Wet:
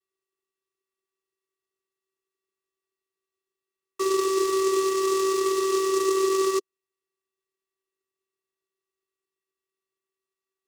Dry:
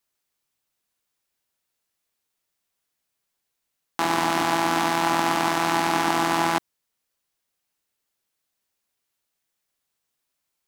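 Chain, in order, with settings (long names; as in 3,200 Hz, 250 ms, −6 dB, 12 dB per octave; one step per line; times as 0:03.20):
channel vocoder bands 8, square 384 Hz
short delay modulated by noise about 5,500 Hz, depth 0.057 ms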